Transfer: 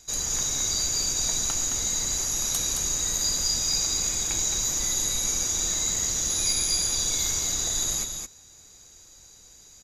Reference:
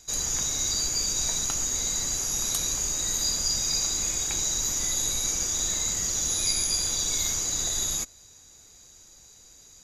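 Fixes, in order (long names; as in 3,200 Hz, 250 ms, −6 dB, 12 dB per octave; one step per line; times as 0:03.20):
clipped peaks rebuilt −15 dBFS
echo removal 217 ms −5.5 dB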